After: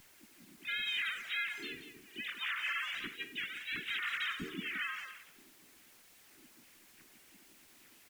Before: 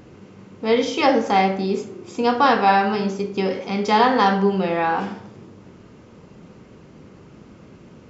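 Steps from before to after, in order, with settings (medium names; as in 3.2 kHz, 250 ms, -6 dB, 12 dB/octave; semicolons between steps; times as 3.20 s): formants replaced by sine waves; inverse Chebyshev band-stop 420–1100 Hz, stop band 50 dB; peak limiter -30.5 dBFS, peak gain reduction 8.5 dB; added noise white -63 dBFS; speakerphone echo 180 ms, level -8 dB; on a send at -21.5 dB: reverberation RT60 0.65 s, pre-delay 12 ms; on the sum: harmony voices -7 st -9 dB, -4 st -2 dB, +3 st -4 dB; trim -2.5 dB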